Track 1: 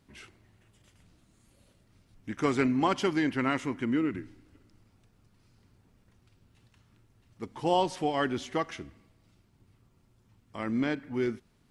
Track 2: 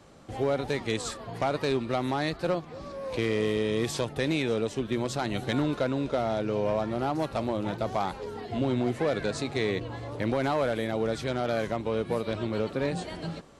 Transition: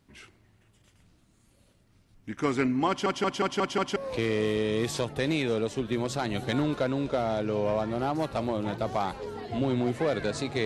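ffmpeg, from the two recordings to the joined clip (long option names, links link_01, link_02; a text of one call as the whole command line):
ffmpeg -i cue0.wav -i cue1.wav -filter_complex "[0:a]apad=whole_dur=10.65,atrim=end=10.65,asplit=6[link_01][link_02][link_03][link_04][link_05][link_06];[link_01]atrim=end=3.062[link_07];[link_02]atrim=start=2.878:end=3.062[link_08];[link_03]atrim=start=2.878:end=3.062[link_09];[link_04]atrim=start=2.878:end=3.062[link_10];[link_05]atrim=start=2.878:end=3.062[link_11];[link_06]atrim=start=2.878:end=3.062[link_12];[1:a]atrim=start=2.958:end=9.65[link_13];[link_07][link_08]acrossfade=duration=0.004:curve1=hsin:curve2=hsin[link_14];[link_14][link_09]acrossfade=duration=0.004:curve1=hsin:curve2=hsin[link_15];[link_15][link_10]acrossfade=duration=0.004:curve1=hsin:curve2=hsin[link_16];[link_16][link_11]acrossfade=duration=0.004:curve1=hsin:curve2=hsin[link_17];[link_17][link_12]acrossfade=duration=0.004:curve1=hsin:curve2=hsin[link_18];[link_18][link_13]acrossfade=duration=0.004:curve1=hsin:curve2=hsin" out.wav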